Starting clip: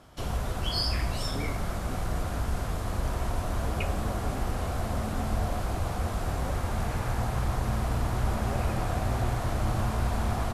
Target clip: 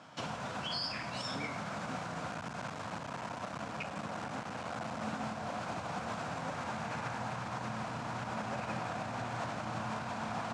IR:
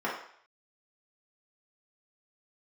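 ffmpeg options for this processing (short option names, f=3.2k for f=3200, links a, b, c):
-filter_complex "[0:a]alimiter=level_in=3dB:limit=-24dB:level=0:latency=1:release=99,volume=-3dB,asettb=1/sr,asplit=3[a][b][c];[a]atrim=end=2.284[d];[b]atrim=start=2.28:end=5.02,asetpts=PTS-STARTPTS,afade=t=in:d=0.004:c=qsin,afade=t=out:st=2.736:d=0.004:c=qsin,aeval=exprs='clip(val(0),-1,0.0119)':c=same[e];[c]atrim=start=5.016[f];[d][e]acrossfade=d=0.004:c1=hsin:c2=qsin[g];[g][f]acrossfade=d=0.004:c1=qsin:c2=hsin,highpass=f=140:w=0.5412,highpass=f=140:w=1.3066,equalizer=f=380:t=q:w=4:g=-10,equalizer=f=940:t=q:w=4:g=4,equalizer=f=1.5k:t=q:w=4:g=4,equalizer=f=2.5k:t=q:w=4:g=4,lowpass=f=7.4k:w=0.5412,lowpass=f=7.4k:w=1.3066,volume=1dB"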